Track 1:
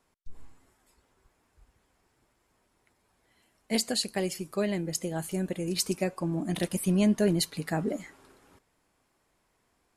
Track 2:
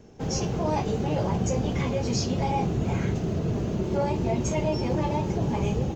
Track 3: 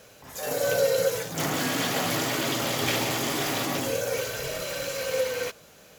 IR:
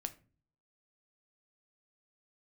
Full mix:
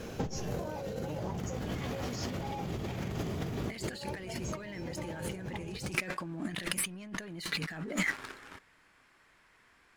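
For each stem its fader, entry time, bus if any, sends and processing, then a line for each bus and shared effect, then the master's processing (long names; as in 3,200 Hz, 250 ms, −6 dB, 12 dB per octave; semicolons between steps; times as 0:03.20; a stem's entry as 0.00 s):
−5.0 dB, 0.00 s, send −15 dB, drawn EQ curve 740 Hz 0 dB, 1,700 Hz +13 dB, 12,000 Hz −5 dB; leveller curve on the samples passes 2
−3.5 dB, 0.00 s, no send, no processing
−6.0 dB, 0.00 s, send −8.5 dB, high-shelf EQ 4,300 Hz −10 dB; automatic ducking −10 dB, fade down 0.80 s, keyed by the first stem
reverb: on, RT60 0.40 s, pre-delay 6 ms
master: compressor whose output falls as the input rises −38 dBFS, ratio −1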